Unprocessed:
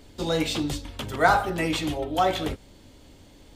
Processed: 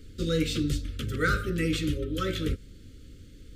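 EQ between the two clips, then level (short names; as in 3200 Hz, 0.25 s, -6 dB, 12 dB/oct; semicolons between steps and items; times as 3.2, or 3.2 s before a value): elliptic band-stop 500–1300 Hz, stop band 50 dB; low shelf 210 Hz +10 dB; -3.5 dB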